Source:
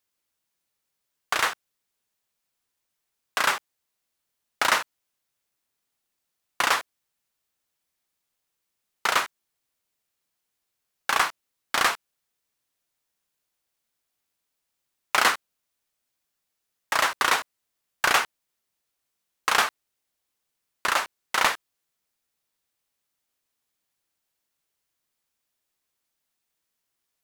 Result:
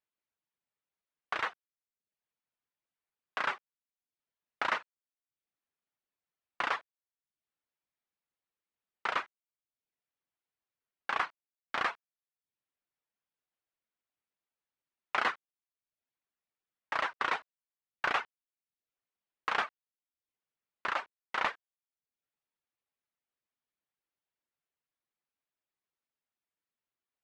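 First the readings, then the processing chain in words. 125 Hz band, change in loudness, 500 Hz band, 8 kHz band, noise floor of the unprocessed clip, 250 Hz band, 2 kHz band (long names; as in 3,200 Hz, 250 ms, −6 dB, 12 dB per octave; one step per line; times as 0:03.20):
−10.0 dB, −10.0 dB, −9.0 dB, −26.0 dB, −81 dBFS, −9.0 dB, −9.5 dB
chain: reverb reduction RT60 0.56 s
low-pass filter 2,700 Hz 12 dB per octave
low-shelf EQ 69 Hz −5.5 dB
level −8 dB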